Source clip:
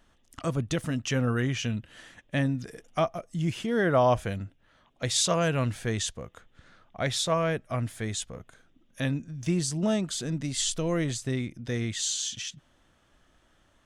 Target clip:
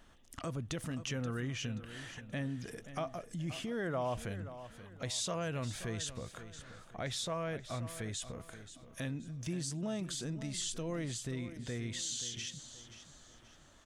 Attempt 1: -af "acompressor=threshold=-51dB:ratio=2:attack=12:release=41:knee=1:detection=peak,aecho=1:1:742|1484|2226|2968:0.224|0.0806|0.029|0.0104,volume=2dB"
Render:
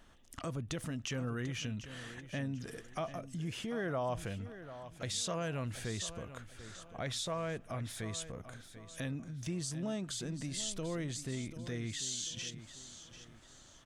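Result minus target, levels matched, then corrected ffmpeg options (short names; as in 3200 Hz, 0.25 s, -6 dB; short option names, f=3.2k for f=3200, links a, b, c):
echo 0.213 s late
-af "acompressor=threshold=-51dB:ratio=2:attack=12:release=41:knee=1:detection=peak,aecho=1:1:529|1058|1587|2116:0.224|0.0806|0.029|0.0104,volume=2dB"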